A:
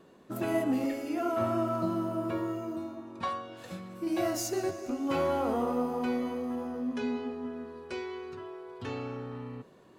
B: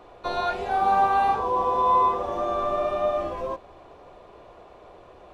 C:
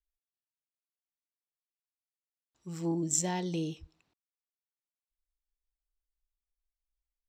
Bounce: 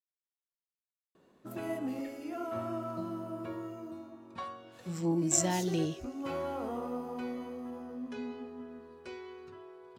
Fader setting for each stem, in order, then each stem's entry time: -7.5 dB, mute, +1.5 dB; 1.15 s, mute, 2.20 s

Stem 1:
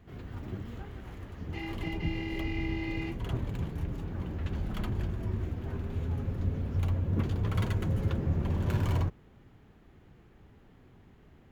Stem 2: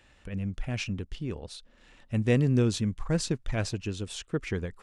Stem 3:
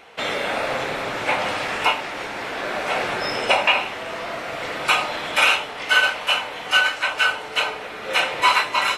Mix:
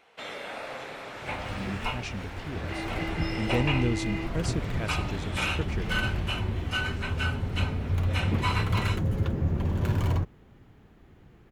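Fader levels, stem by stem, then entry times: +2.5 dB, -4.0 dB, -13.5 dB; 1.15 s, 1.25 s, 0.00 s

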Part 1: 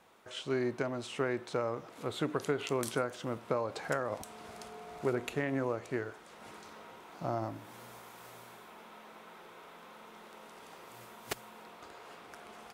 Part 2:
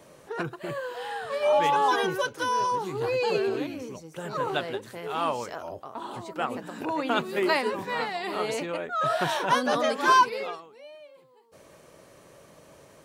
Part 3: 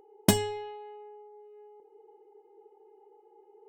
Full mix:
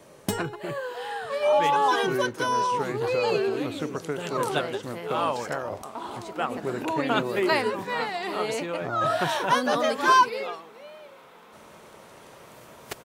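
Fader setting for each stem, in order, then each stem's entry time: +1.0 dB, +1.0 dB, -6.5 dB; 1.60 s, 0.00 s, 0.00 s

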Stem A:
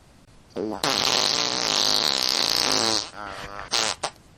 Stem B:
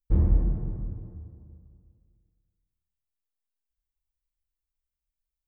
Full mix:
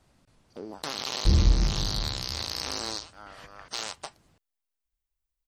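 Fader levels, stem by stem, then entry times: -11.5 dB, +1.0 dB; 0.00 s, 1.15 s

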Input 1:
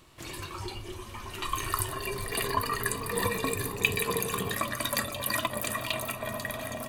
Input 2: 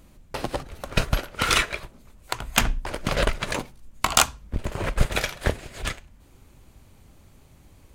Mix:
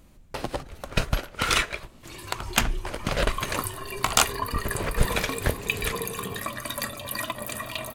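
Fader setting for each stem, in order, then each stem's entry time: -1.5 dB, -2.0 dB; 1.85 s, 0.00 s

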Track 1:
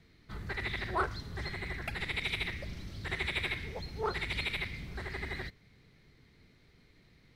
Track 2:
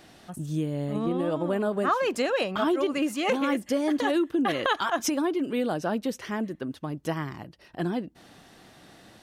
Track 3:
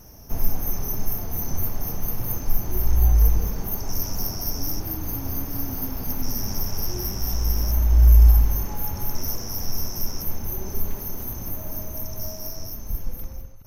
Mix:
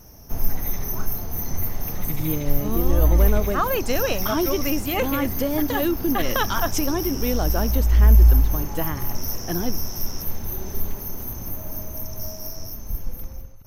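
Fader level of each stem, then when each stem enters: -10.0 dB, +1.5 dB, 0.0 dB; 0.00 s, 1.70 s, 0.00 s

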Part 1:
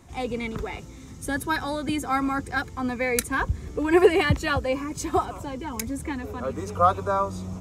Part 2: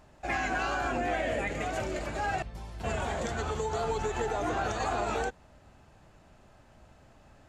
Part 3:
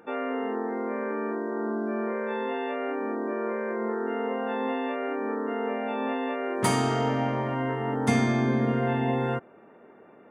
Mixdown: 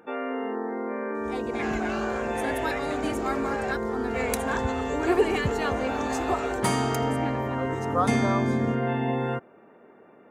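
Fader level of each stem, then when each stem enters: -6.0 dB, -3.0 dB, -0.5 dB; 1.15 s, 1.30 s, 0.00 s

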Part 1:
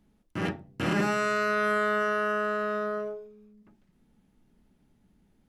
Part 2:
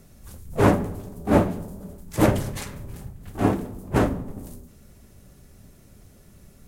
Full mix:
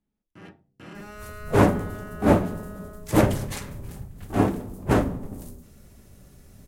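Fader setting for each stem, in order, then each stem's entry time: -15.5 dB, 0.0 dB; 0.00 s, 0.95 s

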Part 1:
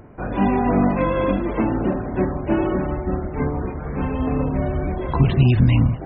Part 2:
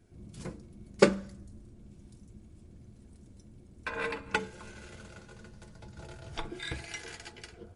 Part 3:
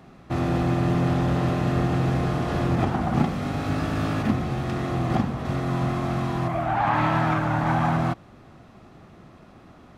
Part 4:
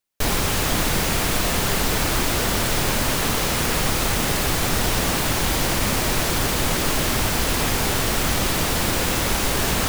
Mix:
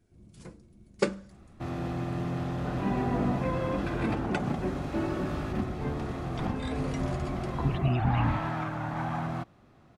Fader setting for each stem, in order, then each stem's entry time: -11.5 dB, -5.5 dB, -10.0 dB, mute; 2.45 s, 0.00 s, 1.30 s, mute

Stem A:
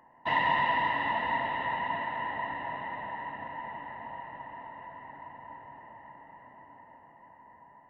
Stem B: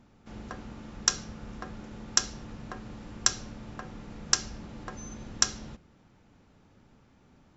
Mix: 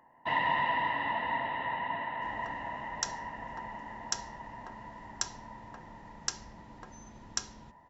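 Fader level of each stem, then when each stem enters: -2.5 dB, -9.5 dB; 0.00 s, 1.95 s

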